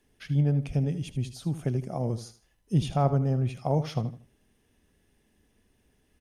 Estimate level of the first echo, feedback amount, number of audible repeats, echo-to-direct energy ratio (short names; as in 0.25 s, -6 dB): -13.0 dB, 27%, 2, -12.5 dB